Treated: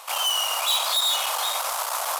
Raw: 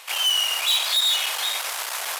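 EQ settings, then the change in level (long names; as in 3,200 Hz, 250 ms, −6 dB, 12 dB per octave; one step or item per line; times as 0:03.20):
flat-topped bell 810 Hz +14.5 dB
high-shelf EQ 3,300 Hz +10.5 dB
−8.5 dB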